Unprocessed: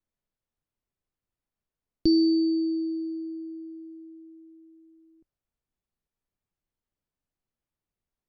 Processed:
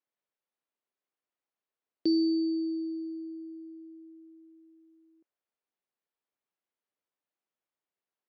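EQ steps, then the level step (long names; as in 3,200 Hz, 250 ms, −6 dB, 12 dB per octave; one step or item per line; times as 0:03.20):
band-pass filter 390–3,600 Hz
0.0 dB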